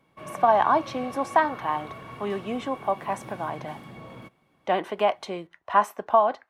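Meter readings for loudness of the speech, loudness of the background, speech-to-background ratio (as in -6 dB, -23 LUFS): -25.5 LUFS, -41.5 LUFS, 16.0 dB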